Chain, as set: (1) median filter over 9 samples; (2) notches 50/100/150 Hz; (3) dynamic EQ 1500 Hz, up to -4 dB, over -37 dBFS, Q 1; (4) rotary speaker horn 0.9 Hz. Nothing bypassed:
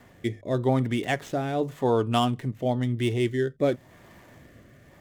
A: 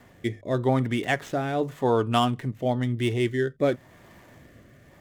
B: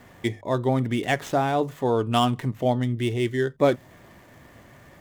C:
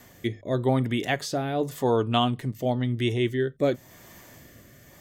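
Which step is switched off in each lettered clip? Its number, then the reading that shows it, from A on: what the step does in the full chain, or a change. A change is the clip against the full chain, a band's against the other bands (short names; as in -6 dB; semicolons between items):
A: 3, 2 kHz band +2.5 dB; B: 4, 125 Hz band -2.0 dB; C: 1, 8 kHz band +3.5 dB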